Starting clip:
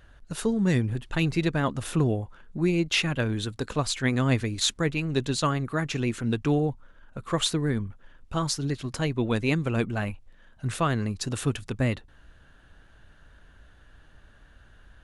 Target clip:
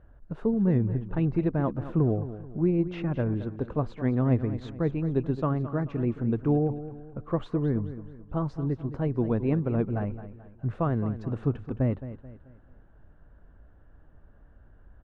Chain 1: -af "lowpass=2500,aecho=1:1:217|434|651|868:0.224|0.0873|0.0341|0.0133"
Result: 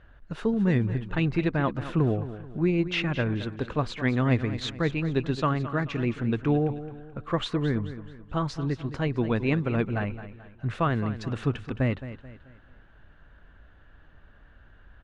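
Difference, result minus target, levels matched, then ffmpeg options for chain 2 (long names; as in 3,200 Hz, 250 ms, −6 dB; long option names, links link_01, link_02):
2,000 Hz band +12.0 dB
-af "lowpass=830,aecho=1:1:217|434|651|868:0.224|0.0873|0.0341|0.0133"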